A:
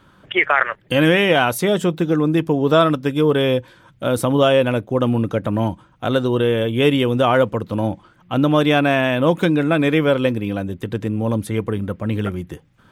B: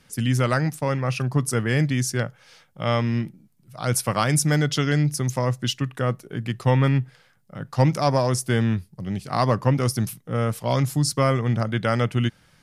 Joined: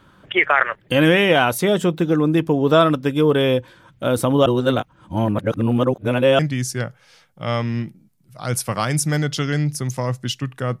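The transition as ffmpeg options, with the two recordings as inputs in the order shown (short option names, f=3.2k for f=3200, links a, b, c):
-filter_complex "[0:a]apad=whole_dur=10.8,atrim=end=10.8,asplit=2[a][b];[a]atrim=end=4.462[c];[b]atrim=start=4.458:end=6.392,asetpts=PTS-STARTPTS,areverse[d];[1:a]atrim=start=1.778:end=6.19[e];[c][d]acrossfade=d=0.004:c1=hsin:c2=hsin[f];[f][e]acrossfade=d=0.004:c1=hsin:c2=hsin"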